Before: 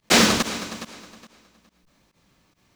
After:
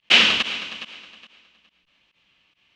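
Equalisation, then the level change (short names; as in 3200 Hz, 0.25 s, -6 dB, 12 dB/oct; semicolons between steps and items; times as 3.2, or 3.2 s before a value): synth low-pass 2900 Hz, resonance Q 5; tilt +3 dB/oct; low shelf 75 Hz +10 dB; -6.5 dB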